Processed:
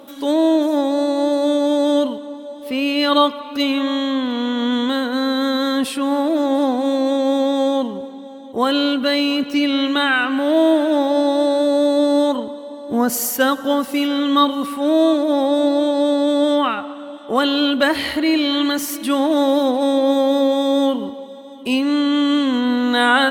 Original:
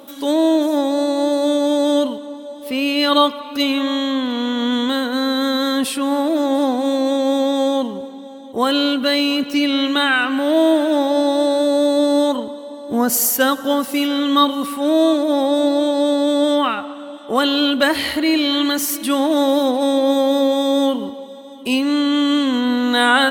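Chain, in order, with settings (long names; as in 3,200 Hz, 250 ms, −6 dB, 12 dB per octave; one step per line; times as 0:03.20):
high-shelf EQ 4,700 Hz −6 dB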